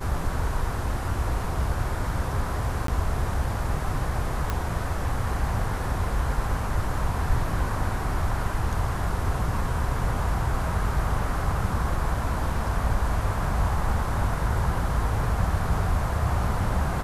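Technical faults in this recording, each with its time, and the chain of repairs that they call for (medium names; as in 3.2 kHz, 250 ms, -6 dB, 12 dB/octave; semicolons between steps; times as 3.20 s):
2.87–2.88 s: dropout 13 ms
4.50 s: pop -13 dBFS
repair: de-click; interpolate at 2.87 s, 13 ms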